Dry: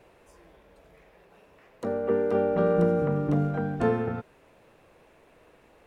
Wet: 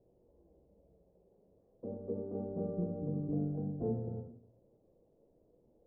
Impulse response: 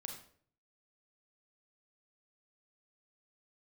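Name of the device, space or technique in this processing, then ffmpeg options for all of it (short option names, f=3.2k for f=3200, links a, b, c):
next room: -filter_complex "[0:a]asettb=1/sr,asplit=3[a][b][c];[a]atrim=end=2.174[d];[b]atrim=start=2.17:end=2.94,asetpts=PTS-STARTPTS,afade=t=in:d=0.004:c=qsin,afade=t=out:st=0.766:d=0.004:c=qsin,highshelf=f=2.8k:g=9.5[e];[c]atrim=start=2.936[f];[d][e]acrossfade=d=0.004:c1=hsin:c2=qsin[g];[g][f]acrossfade=d=0.004:c1=qsin:c2=hsin,lowpass=f=560:w=0.5412,lowpass=f=560:w=1.3066[h];[1:a]atrim=start_sample=2205[i];[h][i]afir=irnorm=-1:irlink=0,volume=-5.5dB"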